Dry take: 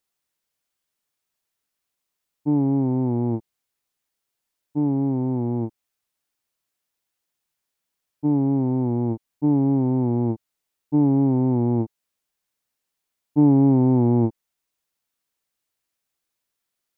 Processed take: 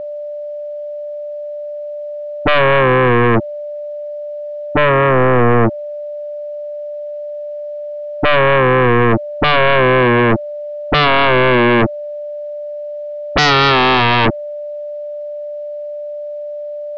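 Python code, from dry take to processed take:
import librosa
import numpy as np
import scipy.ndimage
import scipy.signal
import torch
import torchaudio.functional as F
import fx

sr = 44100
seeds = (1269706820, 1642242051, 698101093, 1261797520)

y = x + 10.0 ** (-46.0 / 20.0) * np.sin(2.0 * np.pi * 590.0 * np.arange(len(x)) / sr)
y = fx.air_absorb(y, sr, metres=210.0)
y = fx.fold_sine(y, sr, drive_db=20, ceiling_db=-8.0)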